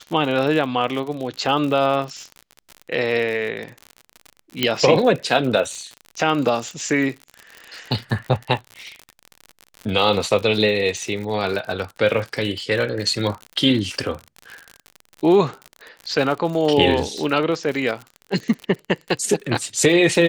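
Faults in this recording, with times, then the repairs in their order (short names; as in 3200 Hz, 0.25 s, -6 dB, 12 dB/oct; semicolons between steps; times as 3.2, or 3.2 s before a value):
crackle 59/s -27 dBFS
4.63 pop -4 dBFS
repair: de-click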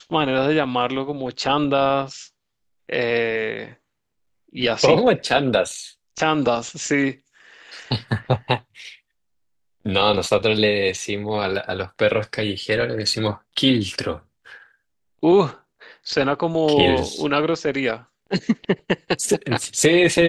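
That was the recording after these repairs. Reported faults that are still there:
4.63 pop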